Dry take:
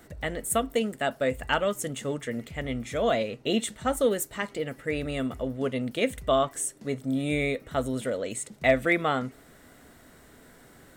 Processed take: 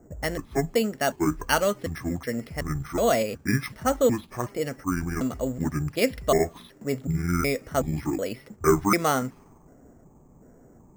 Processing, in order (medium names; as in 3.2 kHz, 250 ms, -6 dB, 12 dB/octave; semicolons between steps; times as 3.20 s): pitch shift switched off and on -9 st, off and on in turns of 372 ms; level-controlled noise filter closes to 520 Hz, open at -25 dBFS; careless resampling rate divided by 6×, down filtered, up hold; trim +3 dB